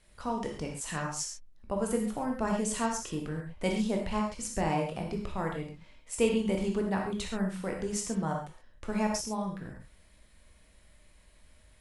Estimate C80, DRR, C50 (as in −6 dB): 8.0 dB, 0.5 dB, 4.5 dB